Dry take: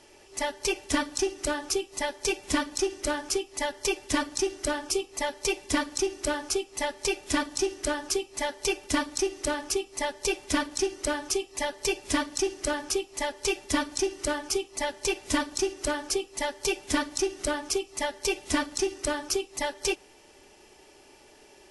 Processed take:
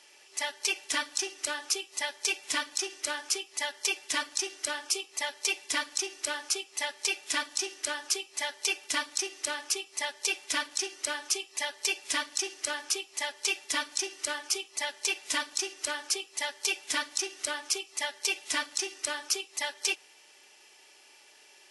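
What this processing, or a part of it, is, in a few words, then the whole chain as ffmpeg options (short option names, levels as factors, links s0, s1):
filter by subtraction: -filter_complex "[0:a]asplit=2[s0][s1];[s1]lowpass=2500,volume=-1[s2];[s0][s2]amix=inputs=2:normalize=0"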